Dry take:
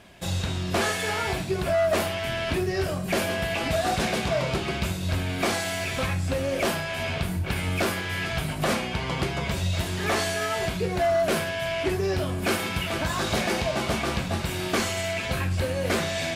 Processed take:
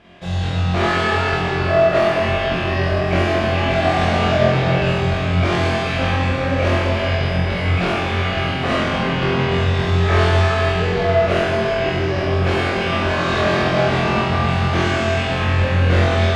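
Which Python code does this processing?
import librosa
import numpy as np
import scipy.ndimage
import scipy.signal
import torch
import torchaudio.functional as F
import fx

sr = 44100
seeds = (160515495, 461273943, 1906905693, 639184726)

y = scipy.signal.sosfilt(scipy.signal.butter(2, 3500.0, 'lowpass', fs=sr, output='sos'), x)
y = fx.room_flutter(y, sr, wall_m=3.9, rt60_s=0.66)
y = fx.rev_freeverb(y, sr, rt60_s=4.0, hf_ratio=0.8, predelay_ms=5, drr_db=-4.0)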